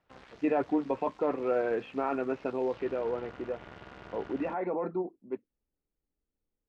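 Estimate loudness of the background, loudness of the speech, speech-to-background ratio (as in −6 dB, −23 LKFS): −51.5 LKFS, −33.0 LKFS, 18.5 dB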